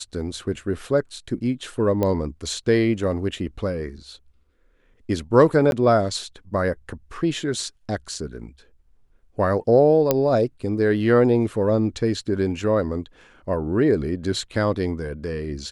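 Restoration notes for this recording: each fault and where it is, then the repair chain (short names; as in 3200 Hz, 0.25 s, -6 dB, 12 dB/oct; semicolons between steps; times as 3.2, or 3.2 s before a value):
2.03 pop -11 dBFS
5.71–5.72 gap 11 ms
10.11 pop -4 dBFS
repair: de-click; interpolate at 5.71, 11 ms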